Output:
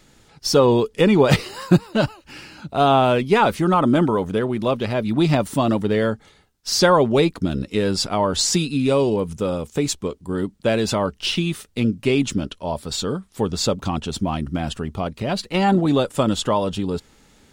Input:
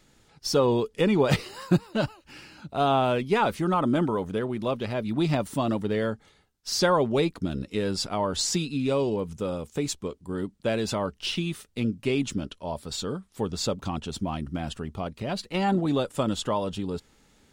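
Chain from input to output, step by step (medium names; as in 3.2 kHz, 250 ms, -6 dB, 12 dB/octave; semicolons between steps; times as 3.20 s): 8.53–9.36 s: peaking EQ 9.5 kHz +7.5 dB 0.24 oct; trim +7 dB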